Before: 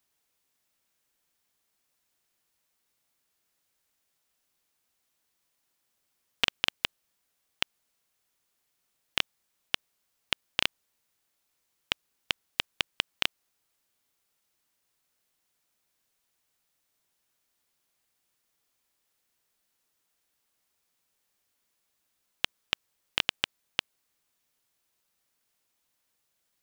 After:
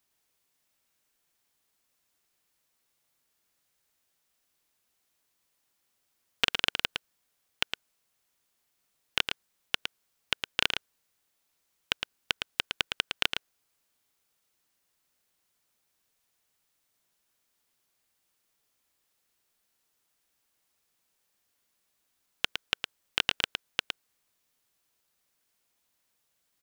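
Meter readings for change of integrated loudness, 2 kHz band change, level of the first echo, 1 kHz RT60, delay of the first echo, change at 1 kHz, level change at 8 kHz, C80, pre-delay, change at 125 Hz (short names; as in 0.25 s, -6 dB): +0.5 dB, +1.5 dB, -6.5 dB, none, 0.111 s, +1.5 dB, +1.0 dB, none, none, 0.0 dB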